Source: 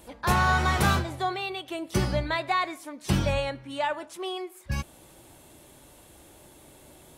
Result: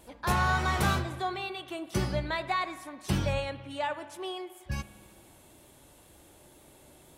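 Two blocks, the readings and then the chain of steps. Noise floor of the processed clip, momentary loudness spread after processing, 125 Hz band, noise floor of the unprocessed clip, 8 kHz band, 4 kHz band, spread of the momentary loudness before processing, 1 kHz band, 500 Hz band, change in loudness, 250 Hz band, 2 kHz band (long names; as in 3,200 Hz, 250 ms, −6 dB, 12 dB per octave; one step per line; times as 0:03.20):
−57 dBFS, 12 LU, −3.5 dB, −53 dBFS, −4.0 dB, −4.0 dB, 12 LU, −4.0 dB, −4.0 dB, −4.0 dB, −4.0 dB, −4.0 dB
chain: pitch vibrato 2 Hz 11 cents
spring reverb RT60 1.8 s, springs 53 ms, chirp 55 ms, DRR 13.5 dB
level −4 dB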